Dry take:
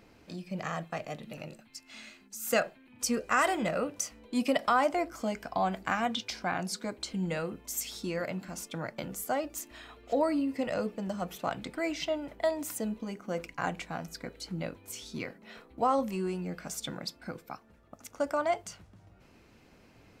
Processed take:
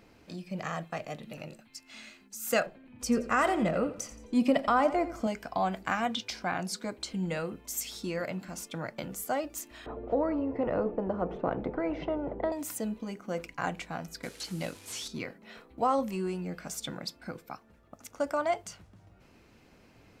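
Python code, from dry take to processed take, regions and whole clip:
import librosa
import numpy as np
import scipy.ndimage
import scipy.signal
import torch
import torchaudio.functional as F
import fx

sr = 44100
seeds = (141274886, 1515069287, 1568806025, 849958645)

y = fx.chain(x, sr, fx.tilt_eq(slope=-2.0),
    fx.echo_feedback(ms=87, feedback_pct=37, wet_db=-14), at=(2.66, 5.27))
y = fx.chain(y, sr, fx.lowpass_res(hz=460.0, q=2.3),
    fx.peak_eq(hz=120.0, db=-5.0, octaves=2.7),
    fx.spectral_comp(ratio=2.0), at=(9.86, 12.52))
y = fx.chain(y, sr, fx.delta_mod(bps=64000, step_db=-51.5),
    fx.highpass(hz=62.0, slope=12),
    fx.high_shelf(hz=2400.0, db=11.5), at=(14.23, 15.08))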